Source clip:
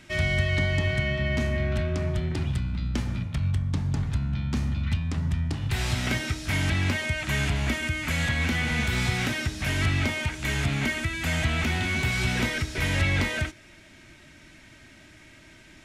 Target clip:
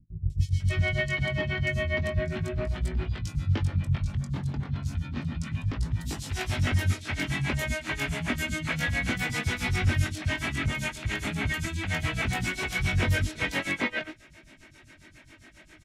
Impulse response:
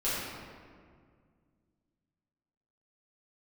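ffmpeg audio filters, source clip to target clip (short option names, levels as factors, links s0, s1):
-filter_complex "[0:a]flanger=delay=18.5:depth=4.1:speed=0.36,tremolo=f=7.4:d=0.94,acrossover=split=190|4200[s0][s1][s2];[s2]adelay=300[s3];[s1]adelay=600[s4];[s0][s4][s3]amix=inputs=3:normalize=0,volume=1.88"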